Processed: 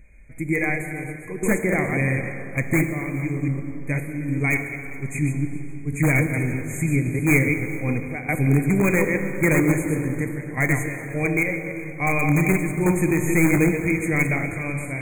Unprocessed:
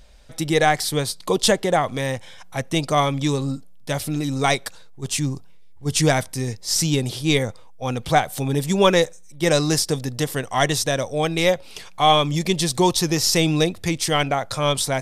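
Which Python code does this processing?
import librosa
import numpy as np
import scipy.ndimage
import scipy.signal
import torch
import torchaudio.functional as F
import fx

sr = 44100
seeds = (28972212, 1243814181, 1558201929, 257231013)

p1 = fx.reverse_delay(x, sr, ms=116, wet_db=-4.5)
p2 = fx.curve_eq(p1, sr, hz=(310.0, 1300.0, 2200.0, 4200.0, 10000.0), db=(0, -22, -2, -16, -10))
p3 = fx.tremolo_random(p2, sr, seeds[0], hz=3.5, depth_pct=80)
p4 = fx.band_shelf(p3, sr, hz=1700.0, db=9.0, octaves=1.7)
p5 = (np.mod(10.0 ** (14.5 / 20.0) * p4 + 1.0, 2.0) - 1.0) / 10.0 ** (14.5 / 20.0)
p6 = p4 + (p5 * 10.0 ** (-6.5 / 20.0))
p7 = fx.brickwall_bandstop(p6, sr, low_hz=2500.0, high_hz=6300.0)
p8 = p7 + fx.echo_single(p7, sr, ms=411, db=-20.5, dry=0)
y = fx.rev_plate(p8, sr, seeds[1], rt60_s=3.6, hf_ratio=0.5, predelay_ms=0, drr_db=6.5)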